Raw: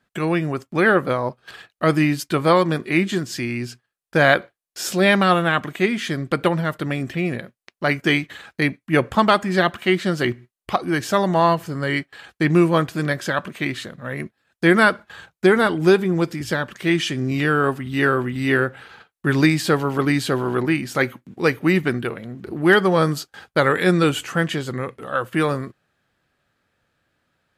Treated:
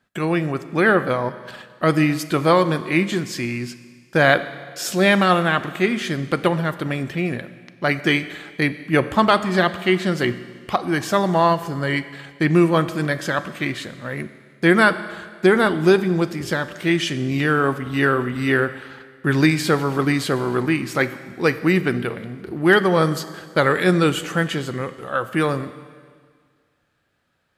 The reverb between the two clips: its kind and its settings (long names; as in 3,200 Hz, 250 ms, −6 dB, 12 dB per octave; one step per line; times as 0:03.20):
four-comb reverb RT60 1.8 s, combs from 29 ms, DRR 13 dB